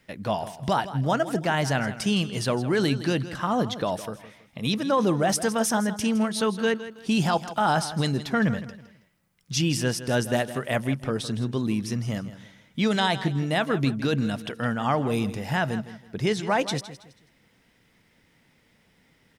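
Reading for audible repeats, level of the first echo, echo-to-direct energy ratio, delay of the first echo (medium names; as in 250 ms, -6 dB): 3, -14.0 dB, -13.5 dB, 162 ms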